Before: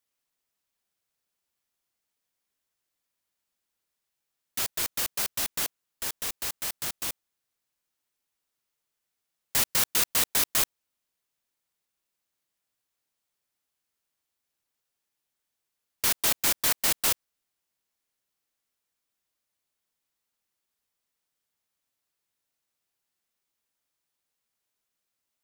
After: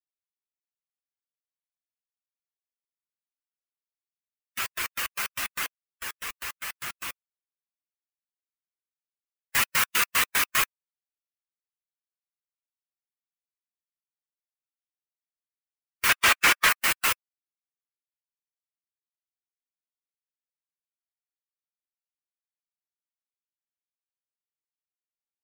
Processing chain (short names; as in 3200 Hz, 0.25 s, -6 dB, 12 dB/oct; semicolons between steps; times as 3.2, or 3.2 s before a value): per-bin expansion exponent 1.5; band shelf 1700 Hz +11.5 dB; 16.09–16.69 overdrive pedal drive 24 dB, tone 3700 Hz, clips at -9 dBFS